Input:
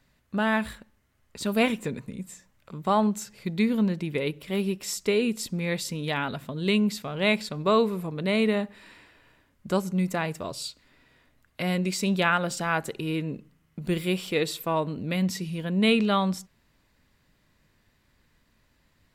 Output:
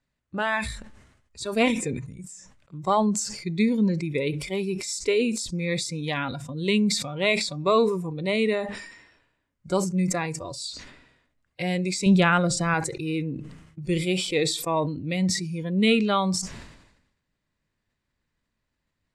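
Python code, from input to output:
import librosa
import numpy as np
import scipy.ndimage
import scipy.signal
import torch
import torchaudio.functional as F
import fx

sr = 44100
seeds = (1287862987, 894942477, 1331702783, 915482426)

y = fx.low_shelf(x, sr, hz=270.0, db=9.5, at=(12.06, 12.74))
y = scipy.signal.sosfilt(scipy.signal.cheby1(3, 1.0, 8700.0, 'lowpass', fs=sr, output='sos'), y)
y = fx.noise_reduce_blind(y, sr, reduce_db=15)
y = fx.sustainer(y, sr, db_per_s=62.0)
y = y * librosa.db_to_amplitude(1.5)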